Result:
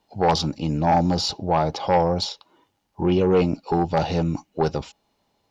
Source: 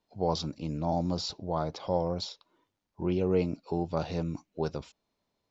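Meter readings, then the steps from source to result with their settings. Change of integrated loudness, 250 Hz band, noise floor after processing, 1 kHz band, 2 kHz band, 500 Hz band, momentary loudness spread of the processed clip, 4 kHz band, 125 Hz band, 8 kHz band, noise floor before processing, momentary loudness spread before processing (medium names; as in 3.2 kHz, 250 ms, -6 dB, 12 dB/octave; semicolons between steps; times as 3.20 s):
+9.5 dB, +9.0 dB, -72 dBFS, +13.5 dB, +14.5 dB, +9.0 dB, 7 LU, +10.5 dB, +9.0 dB, no reading, -82 dBFS, 8 LU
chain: small resonant body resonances 820/2900 Hz, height 10 dB, ringing for 45 ms; Chebyshev shaper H 5 -11 dB, 7 -22 dB, 8 -31 dB, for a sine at -13 dBFS; trim +5 dB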